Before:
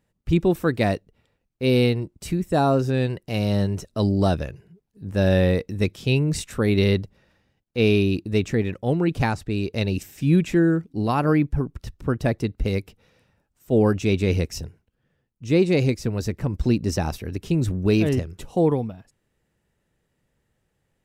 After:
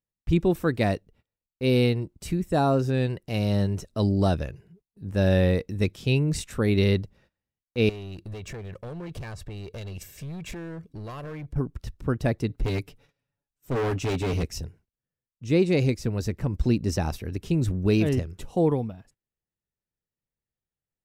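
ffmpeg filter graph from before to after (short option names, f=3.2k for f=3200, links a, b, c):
-filter_complex "[0:a]asettb=1/sr,asplit=3[a][b][c];[a]atrim=end=7.894[d];[b]atrim=start=7.89:end=11.56,asetpts=PTS-STARTPTS,afade=t=in:d=0.004:c=qsin,afade=t=out:st=3.666:d=0.004:c=qsin,aecho=1:1:1.8:0.57,atrim=end_sample=161847,acompressor=threshold=-28dB:ratio=8:attack=3.2:release=140:knee=1:detection=peak,asoftclip=type=hard:threshold=-31dB[e];[c]atrim=start=11.556[f];[d][e]acrossfade=d=0.004:c1=hsin:c2=qsin[g];[g][f]acrossfade=d=0.004:c1=qsin:c2=hsin,asettb=1/sr,asplit=3[h][i][j];[h]atrim=end=12.494[k];[i]atrim=start=12.49:end=14.43,asetpts=PTS-STARTPTS,afade=t=in:d=0.004:c=qsin,afade=t=out:st=1.936:d=0.004:c=qsin,aecho=1:1:7.1:0.86,atrim=end_sample=85554,volume=21dB,asoftclip=hard,volume=-21dB[l];[j]atrim=start=14.426[m];[k][l]acrossfade=d=0.004:c1=hsin:c2=qsin[n];[n][m]acrossfade=d=0.004:c1=qsin:c2=hsin,agate=range=-21dB:threshold=-54dB:ratio=16:detection=peak,lowshelf=f=71:g=5,volume=-3dB"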